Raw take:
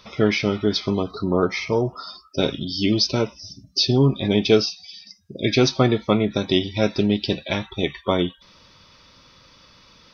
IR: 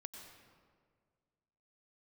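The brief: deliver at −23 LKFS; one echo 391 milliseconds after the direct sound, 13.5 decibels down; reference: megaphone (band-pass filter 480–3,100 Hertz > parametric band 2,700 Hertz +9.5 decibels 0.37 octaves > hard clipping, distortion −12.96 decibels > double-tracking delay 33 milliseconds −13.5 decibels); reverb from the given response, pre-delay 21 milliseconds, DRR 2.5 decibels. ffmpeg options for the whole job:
-filter_complex "[0:a]aecho=1:1:391:0.211,asplit=2[link_01][link_02];[1:a]atrim=start_sample=2205,adelay=21[link_03];[link_02][link_03]afir=irnorm=-1:irlink=0,volume=2dB[link_04];[link_01][link_04]amix=inputs=2:normalize=0,highpass=480,lowpass=3100,equalizer=frequency=2700:width_type=o:width=0.37:gain=9.5,asoftclip=type=hard:threshold=-16.5dB,asplit=2[link_05][link_06];[link_06]adelay=33,volume=-13.5dB[link_07];[link_05][link_07]amix=inputs=2:normalize=0,volume=2dB"

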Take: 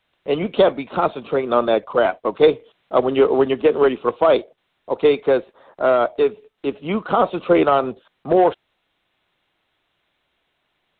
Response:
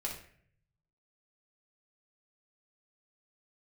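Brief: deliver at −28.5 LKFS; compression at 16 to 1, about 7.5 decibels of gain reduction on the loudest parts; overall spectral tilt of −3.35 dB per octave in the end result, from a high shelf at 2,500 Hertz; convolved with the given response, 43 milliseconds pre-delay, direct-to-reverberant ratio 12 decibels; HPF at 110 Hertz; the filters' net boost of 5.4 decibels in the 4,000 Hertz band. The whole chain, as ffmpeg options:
-filter_complex "[0:a]highpass=110,highshelf=frequency=2500:gain=3.5,equalizer=frequency=4000:width_type=o:gain=4,acompressor=threshold=-16dB:ratio=16,asplit=2[link_01][link_02];[1:a]atrim=start_sample=2205,adelay=43[link_03];[link_02][link_03]afir=irnorm=-1:irlink=0,volume=-13.5dB[link_04];[link_01][link_04]amix=inputs=2:normalize=0,volume=-5.5dB"

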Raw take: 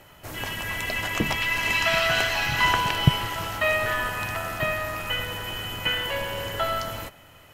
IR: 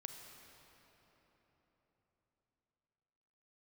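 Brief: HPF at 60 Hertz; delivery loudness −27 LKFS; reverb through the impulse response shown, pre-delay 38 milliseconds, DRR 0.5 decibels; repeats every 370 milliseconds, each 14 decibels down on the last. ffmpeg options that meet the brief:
-filter_complex "[0:a]highpass=60,aecho=1:1:370|740:0.2|0.0399,asplit=2[link_01][link_02];[1:a]atrim=start_sample=2205,adelay=38[link_03];[link_02][link_03]afir=irnorm=-1:irlink=0,volume=3.5dB[link_04];[link_01][link_04]amix=inputs=2:normalize=0,volume=-4.5dB"

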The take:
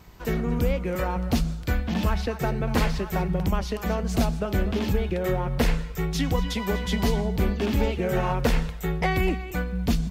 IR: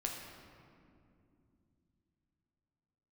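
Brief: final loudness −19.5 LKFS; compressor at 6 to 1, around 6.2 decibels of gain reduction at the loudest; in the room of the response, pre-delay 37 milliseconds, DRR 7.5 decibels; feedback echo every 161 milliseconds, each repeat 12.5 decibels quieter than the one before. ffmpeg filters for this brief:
-filter_complex "[0:a]acompressor=threshold=-24dB:ratio=6,aecho=1:1:161|322|483:0.237|0.0569|0.0137,asplit=2[link_01][link_02];[1:a]atrim=start_sample=2205,adelay=37[link_03];[link_02][link_03]afir=irnorm=-1:irlink=0,volume=-8.5dB[link_04];[link_01][link_04]amix=inputs=2:normalize=0,volume=9dB"

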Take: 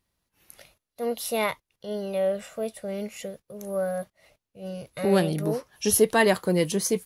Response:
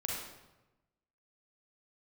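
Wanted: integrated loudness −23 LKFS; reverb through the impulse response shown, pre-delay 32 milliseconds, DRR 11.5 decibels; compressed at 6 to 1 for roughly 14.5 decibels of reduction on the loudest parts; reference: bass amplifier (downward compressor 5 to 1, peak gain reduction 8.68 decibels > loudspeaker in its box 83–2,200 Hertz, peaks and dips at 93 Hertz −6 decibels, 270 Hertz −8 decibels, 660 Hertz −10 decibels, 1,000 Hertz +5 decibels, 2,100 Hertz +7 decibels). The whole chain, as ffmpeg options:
-filter_complex "[0:a]acompressor=threshold=-30dB:ratio=6,asplit=2[link_01][link_02];[1:a]atrim=start_sample=2205,adelay=32[link_03];[link_02][link_03]afir=irnorm=-1:irlink=0,volume=-14.5dB[link_04];[link_01][link_04]amix=inputs=2:normalize=0,acompressor=threshold=-36dB:ratio=5,highpass=frequency=83:width=0.5412,highpass=frequency=83:width=1.3066,equalizer=frequency=93:width_type=q:width=4:gain=-6,equalizer=frequency=270:width_type=q:width=4:gain=-8,equalizer=frequency=660:width_type=q:width=4:gain=-10,equalizer=frequency=1000:width_type=q:width=4:gain=5,equalizer=frequency=2100:width_type=q:width=4:gain=7,lowpass=frequency=2200:width=0.5412,lowpass=frequency=2200:width=1.3066,volume=20dB"

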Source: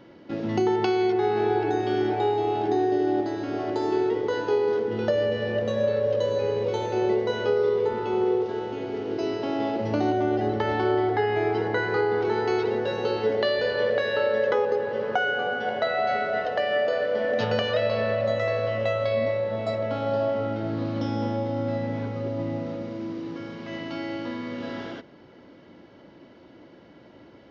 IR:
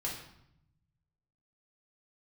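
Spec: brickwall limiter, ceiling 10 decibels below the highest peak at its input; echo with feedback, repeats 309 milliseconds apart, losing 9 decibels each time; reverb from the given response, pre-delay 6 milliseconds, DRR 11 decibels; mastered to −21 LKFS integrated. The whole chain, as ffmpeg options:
-filter_complex "[0:a]alimiter=limit=-20dB:level=0:latency=1,aecho=1:1:309|618|927|1236:0.355|0.124|0.0435|0.0152,asplit=2[link_01][link_02];[1:a]atrim=start_sample=2205,adelay=6[link_03];[link_02][link_03]afir=irnorm=-1:irlink=0,volume=-13.5dB[link_04];[link_01][link_04]amix=inputs=2:normalize=0,volume=6.5dB"

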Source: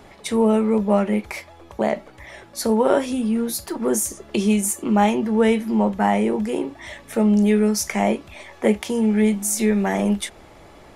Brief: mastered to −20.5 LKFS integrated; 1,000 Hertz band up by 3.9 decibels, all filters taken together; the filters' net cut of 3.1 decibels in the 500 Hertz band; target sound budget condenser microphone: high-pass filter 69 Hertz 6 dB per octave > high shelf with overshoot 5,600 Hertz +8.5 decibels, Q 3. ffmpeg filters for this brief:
ffmpeg -i in.wav -af "highpass=frequency=69:poles=1,equalizer=frequency=500:width_type=o:gain=-5.5,equalizer=frequency=1000:width_type=o:gain=7.5,highshelf=frequency=5600:width_type=q:width=3:gain=8.5,volume=-2.5dB" out.wav

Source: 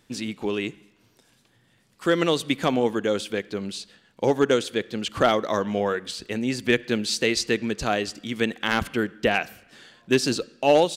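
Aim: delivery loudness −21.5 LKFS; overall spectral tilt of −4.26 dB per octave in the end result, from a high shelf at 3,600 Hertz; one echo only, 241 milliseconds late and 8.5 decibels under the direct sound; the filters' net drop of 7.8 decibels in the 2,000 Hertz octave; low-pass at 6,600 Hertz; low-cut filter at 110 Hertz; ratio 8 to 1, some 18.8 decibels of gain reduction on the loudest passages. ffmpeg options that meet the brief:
ffmpeg -i in.wav -af "highpass=110,lowpass=6600,equalizer=frequency=2000:width_type=o:gain=-8.5,highshelf=frequency=3600:gain=-7,acompressor=threshold=-35dB:ratio=8,aecho=1:1:241:0.376,volume=18dB" out.wav

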